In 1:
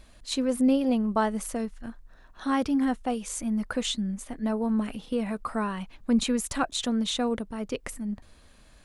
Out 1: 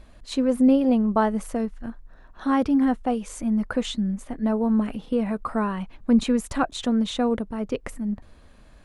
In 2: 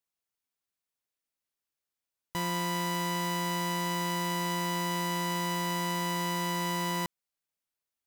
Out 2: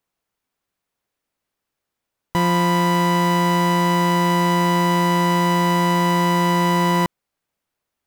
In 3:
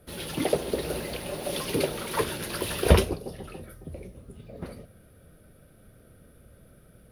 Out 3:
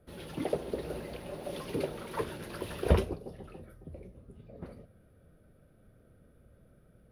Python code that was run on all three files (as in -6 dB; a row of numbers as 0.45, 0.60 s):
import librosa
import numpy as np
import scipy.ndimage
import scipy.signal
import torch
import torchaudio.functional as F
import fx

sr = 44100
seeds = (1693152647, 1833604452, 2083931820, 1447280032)

y = fx.high_shelf(x, sr, hz=2500.0, db=-11.0)
y = y * 10.0 ** (-9 / 20.0) / np.max(np.abs(y))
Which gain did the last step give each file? +5.0, +15.5, -6.0 dB